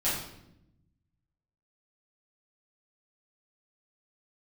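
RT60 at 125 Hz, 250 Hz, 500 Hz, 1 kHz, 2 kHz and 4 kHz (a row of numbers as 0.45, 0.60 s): 1.7, 1.4, 0.90, 0.70, 0.70, 0.65 s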